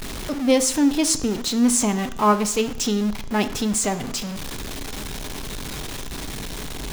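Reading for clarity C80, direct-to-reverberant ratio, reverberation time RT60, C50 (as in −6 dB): 17.5 dB, 11.0 dB, 0.70 s, 14.5 dB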